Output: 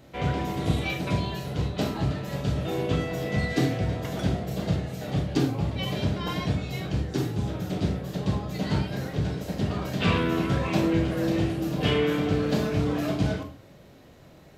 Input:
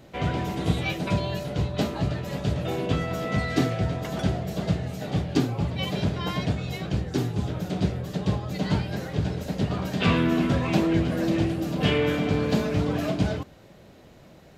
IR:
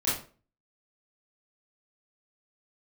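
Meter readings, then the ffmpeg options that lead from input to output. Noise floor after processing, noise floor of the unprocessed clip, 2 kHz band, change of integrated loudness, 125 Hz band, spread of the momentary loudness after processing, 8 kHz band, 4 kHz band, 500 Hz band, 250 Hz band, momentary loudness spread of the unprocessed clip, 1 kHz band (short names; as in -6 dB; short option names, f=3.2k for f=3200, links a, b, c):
-51 dBFS, -50 dBFS, -1.0 dB, -1.0 dB, -1.0 dB, 6 LU, -0.5 dB, -1.0 dB, -0.5 dB, -1.5 dB, 6 LU, -1.0 dB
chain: -filter_complex "[0:a]asplit=2[a][b];[1:a]atrim=start_sample=2205,highshelf=f=9k:g=7.5[c];[b][c]afir=irnorm=-1:irlink=0,volume=-12dB[d];[a][d]amix=inputs=2:normalize=0,volume=-4dB"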